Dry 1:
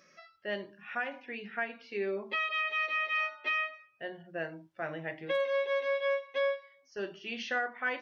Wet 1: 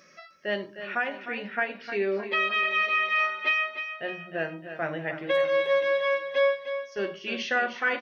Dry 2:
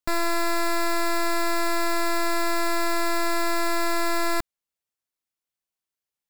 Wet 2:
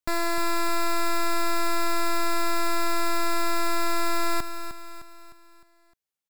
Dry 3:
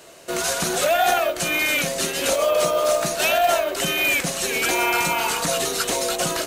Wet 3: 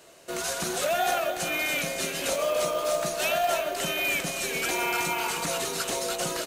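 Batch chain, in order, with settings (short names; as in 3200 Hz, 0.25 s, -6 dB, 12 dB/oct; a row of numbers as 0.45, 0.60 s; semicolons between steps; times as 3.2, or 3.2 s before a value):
feedback echo 0.306 s, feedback 47%, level -10 dB; match loudness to -27 LUFS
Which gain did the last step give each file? +6.5, -1.5, -7.0 dB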